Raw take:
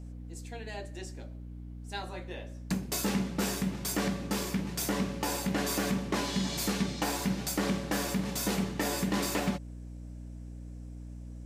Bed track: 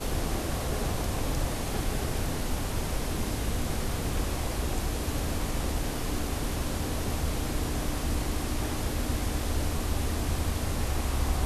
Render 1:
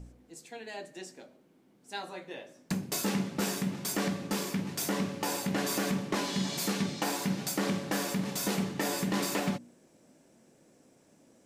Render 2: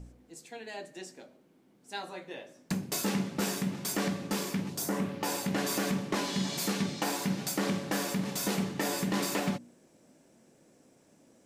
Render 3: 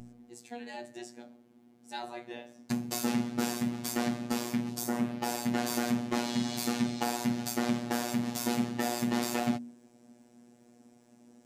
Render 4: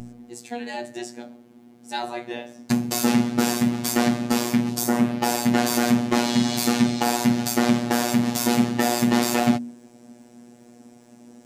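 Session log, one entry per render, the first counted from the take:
de-hum 60 Hz, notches 5
4.68–5.23 s: peaking EQ 1.5 kHz -> 9.5 kHz -10 dB 1.2 oct
small resonant body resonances 240/760 Hz, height 10 dB, ringing for 45 ms; robot voice 120 Hz
trim +10.5 dB; peak limiter -2 dBFS, peak gain reduction 3 dB

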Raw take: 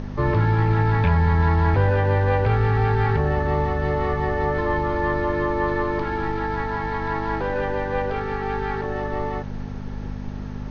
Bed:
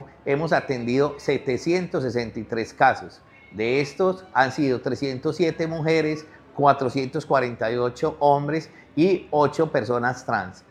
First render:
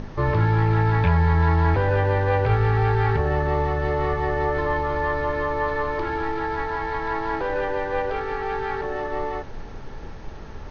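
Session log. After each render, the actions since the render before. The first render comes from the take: de-hum 50 Hz, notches 7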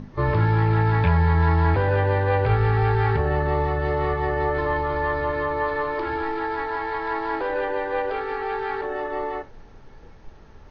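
noise print and reduce 10 dB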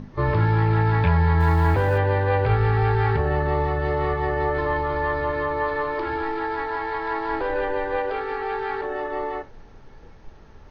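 1.40–1.98 s: companding laws mixed up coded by mu; 7.29–7.96 s: bass shelf 110 Hz +10 dB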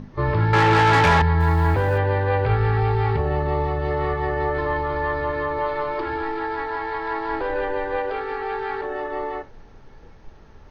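0.53–1.22 s: overdrive pedal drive 25 dB, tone 3.8 kHz, clips at -8.5 dBFS; 2.80–3.91 s: peaking EQ 1.6 kHz -9 dB 0.29 oct; 5.58–6.01 s: comb 5.4 ms, depth 57%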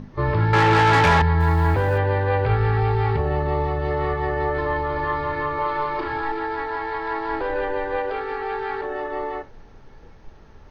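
4.94–6.32 s: flutter echo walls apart 6 m, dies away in 0.43 s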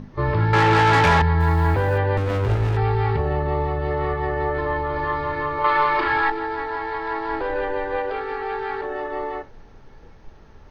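2.17–2.77 s: sliding maximum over 33 samples; 3.33–4.94 s: distance through air 75 m; 5.64–6.30 s: peaking EQ 2.2 kHz +10 dB 2.9 oct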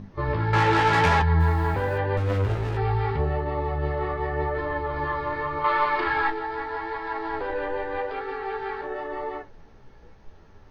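flange 0.85 Hz, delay 9.5 ms, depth 7.8 ms, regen +40%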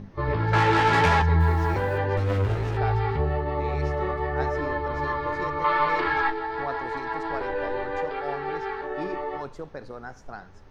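add bed -16.5 dB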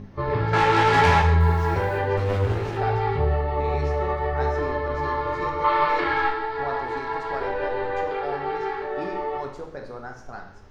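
gated-style reverb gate 240 ms falling, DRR 2 dB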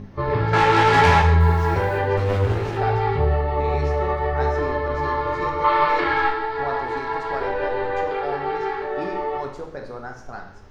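trim +2.5 dB

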